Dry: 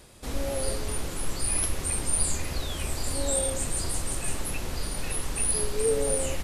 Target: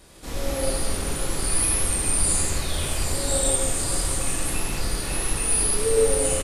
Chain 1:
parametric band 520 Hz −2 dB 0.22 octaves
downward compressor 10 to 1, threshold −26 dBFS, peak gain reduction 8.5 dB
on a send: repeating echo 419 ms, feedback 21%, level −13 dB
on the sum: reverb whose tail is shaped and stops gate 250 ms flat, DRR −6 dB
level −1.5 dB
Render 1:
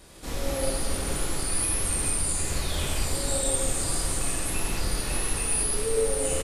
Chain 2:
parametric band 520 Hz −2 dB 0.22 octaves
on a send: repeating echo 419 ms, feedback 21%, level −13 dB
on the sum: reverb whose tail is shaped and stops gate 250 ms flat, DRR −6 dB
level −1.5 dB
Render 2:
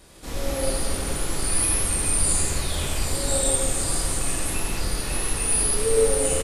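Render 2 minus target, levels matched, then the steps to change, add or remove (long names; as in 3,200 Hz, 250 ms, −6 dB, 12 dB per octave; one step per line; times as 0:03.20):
echo 178 ms early
change: repeating echo 597 ms, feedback 21%, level −13 dB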